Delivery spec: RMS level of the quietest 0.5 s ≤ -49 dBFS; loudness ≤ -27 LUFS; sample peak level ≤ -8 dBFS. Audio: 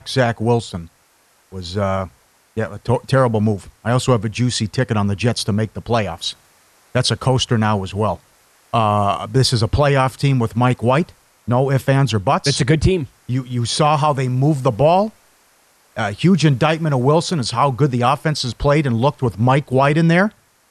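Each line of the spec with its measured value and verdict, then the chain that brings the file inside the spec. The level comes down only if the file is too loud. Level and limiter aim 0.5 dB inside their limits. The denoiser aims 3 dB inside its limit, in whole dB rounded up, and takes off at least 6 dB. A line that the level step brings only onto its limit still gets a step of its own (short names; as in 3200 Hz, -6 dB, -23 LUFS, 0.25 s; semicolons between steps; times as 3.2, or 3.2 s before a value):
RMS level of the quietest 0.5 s -57 dBFS: OK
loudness -17.5 LUFS: fail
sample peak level -4.5 dBFS: fail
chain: gain -10 dB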